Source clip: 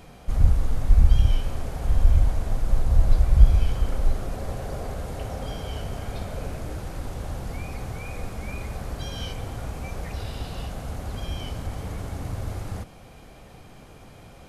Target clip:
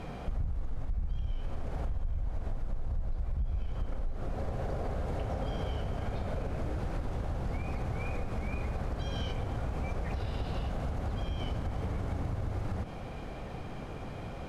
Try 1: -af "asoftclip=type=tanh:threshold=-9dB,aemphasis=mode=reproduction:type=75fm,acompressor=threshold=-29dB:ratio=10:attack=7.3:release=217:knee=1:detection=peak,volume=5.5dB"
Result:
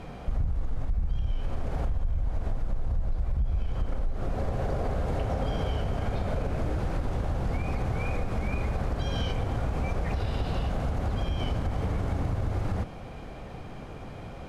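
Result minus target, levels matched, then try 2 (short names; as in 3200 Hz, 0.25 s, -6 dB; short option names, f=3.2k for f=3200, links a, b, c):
compressor: peak gain reduction -5.5 dB
-af "asoftclip=type=tanh:threshold=-9dB,aemphasis=mode=reproduction:type=75fm,acompressor=threshold=-35dB:ratio=10:attack=7.3:release=217:knee=1:detection=peak,volume=5.5dB"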